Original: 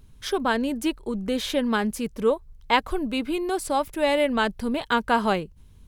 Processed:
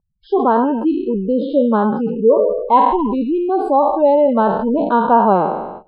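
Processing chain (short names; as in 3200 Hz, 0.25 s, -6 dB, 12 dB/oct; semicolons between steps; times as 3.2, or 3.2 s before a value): spectral trails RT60 1.17 s; in parallel at -8 dB: hard clip -11.5 dBFS, distortion -22 dB; on the sum: band shelf 3600 Hz +12.5 dB 1.1 oct; gate with hold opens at -21 dBFS; spectral gate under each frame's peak -15 dB strong; EQ curve 120 Hz 0 dB, 180 Hz +13 dB, 1000 Hz +15 dB, 2900 Hz -23 dB, 7300 Hz -17 dB; gain -8.5 dB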